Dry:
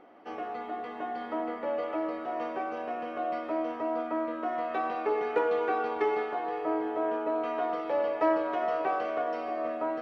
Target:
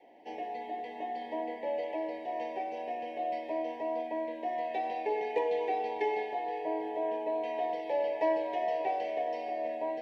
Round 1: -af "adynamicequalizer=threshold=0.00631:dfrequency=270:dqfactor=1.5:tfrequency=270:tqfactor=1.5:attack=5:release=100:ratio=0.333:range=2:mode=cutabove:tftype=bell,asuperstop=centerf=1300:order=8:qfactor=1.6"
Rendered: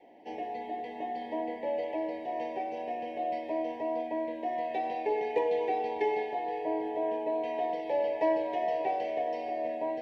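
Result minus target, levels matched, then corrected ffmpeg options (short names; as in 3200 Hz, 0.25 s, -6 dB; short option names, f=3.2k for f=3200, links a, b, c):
125 Hz band +5.0 dB
-af "adynamicequalizer=threshold=0.00631:dfrequency=270:dqfactor=1.5:tfrequency=270:tqfactor=1.5:attack=5:release=100:ratio=0.333:range=2:mode=cutabove:tftype=bell,asuperstop=centerf=1300:order=8:qfactor=1.6,equalizer=f=81:w=0.31:g=-8"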